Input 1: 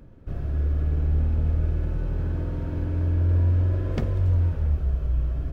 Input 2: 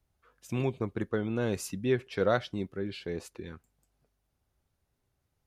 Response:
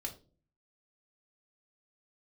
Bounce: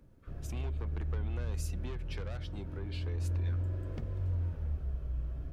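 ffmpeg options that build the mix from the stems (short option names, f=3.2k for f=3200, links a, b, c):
-filter_complex "[0:a]volume=-12dB[a];[1:a]asoftclip=type=tanh:threshold=-28.5dB,lowshelf=f=330:g=-12,volume=-0.5dB[b];[a][b]amix=inputs=2:normalize=0,acrossover=split=160[c][d];[d]acompressor=threshold=-43dB:ratio=10[e];[c][e]amix=inputs=2:normalize=0"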